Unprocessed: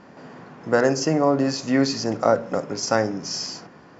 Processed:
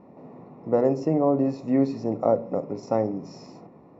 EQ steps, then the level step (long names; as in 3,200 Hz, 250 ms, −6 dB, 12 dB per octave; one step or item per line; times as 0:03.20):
moving average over 28 samples
low-shelf EQ 170 Hz −3.5 dB
0.0 dB